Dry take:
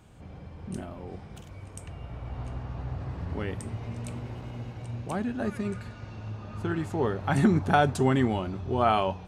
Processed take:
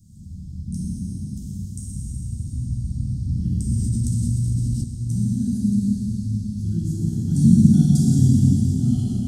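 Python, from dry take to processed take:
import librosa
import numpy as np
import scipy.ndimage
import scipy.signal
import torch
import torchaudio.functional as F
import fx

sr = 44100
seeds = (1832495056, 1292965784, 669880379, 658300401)

y = scipy.signal.sosfilt(scipy.signal.ellip(3, 1.0, 40, [220.0, 5200.0], 'bandstop', fs=sr, output='sos'), x)
y = fx.rev_plate(y, sr, seeds[0], rt60_s=4.4, hf_ratio=0.95, predelay_ms=0, drr_db=-8.0)
y = fx.env_flatten(y, sr, amount_pct=70, at=(3.7, 4.84))
y = F.gain(torch.from_numpy(y), 4.0).numpy()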